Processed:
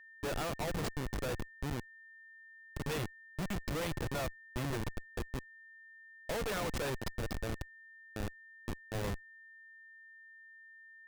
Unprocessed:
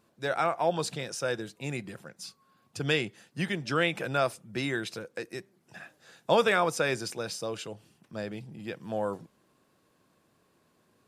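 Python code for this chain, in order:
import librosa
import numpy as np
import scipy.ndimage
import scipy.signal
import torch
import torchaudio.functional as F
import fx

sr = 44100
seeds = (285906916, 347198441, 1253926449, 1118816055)

y = fx.schmitt(x, sr, flips_db=-29.5)
y = y + 10.0 ** (-51.0 / 20.0) * np.sin(2.0 * np.pi * 1800.0 * np.arange(len(y)) / sr)
y = F.gain(torch.from_numpy(y), -2.5).numpy()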